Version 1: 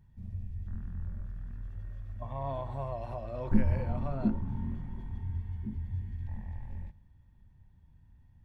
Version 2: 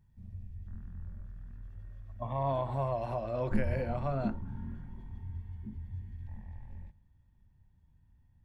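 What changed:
speech +5.0 dB
background −5.5 dB

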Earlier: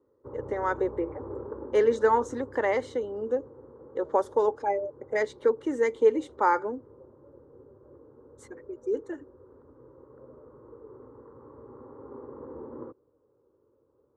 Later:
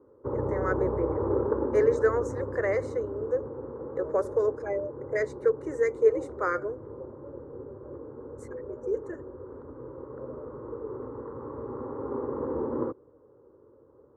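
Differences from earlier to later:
speech: add phaser with its sweep stopped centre 870 Hz, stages 6
background +11.0 dB

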